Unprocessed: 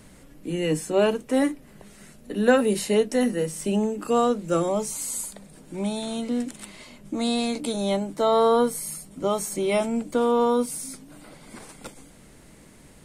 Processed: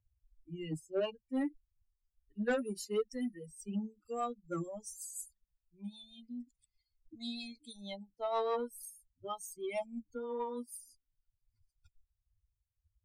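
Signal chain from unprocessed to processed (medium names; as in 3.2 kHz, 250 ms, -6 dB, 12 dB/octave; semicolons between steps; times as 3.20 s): expander on every frequency bin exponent 3; rotary cabinet horn 6.3 Hz; saturation -20 dBFS, distortion -16 dB; trim -5.5 dB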